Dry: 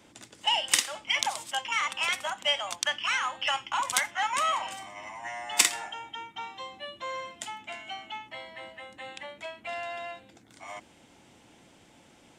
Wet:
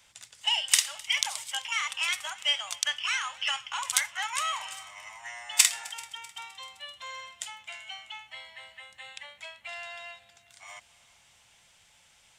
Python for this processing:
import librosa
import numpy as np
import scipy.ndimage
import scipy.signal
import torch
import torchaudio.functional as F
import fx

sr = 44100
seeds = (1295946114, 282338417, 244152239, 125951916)

y = fx.tone_stack(x, sr, knobs='10-0-10')
y = fx.echo_heads(y, sr, ms=129, heads='second and third', feedback_pct=51, wet_db=-23.5)
y = y * 10.0 ** (3.0 / 20.0)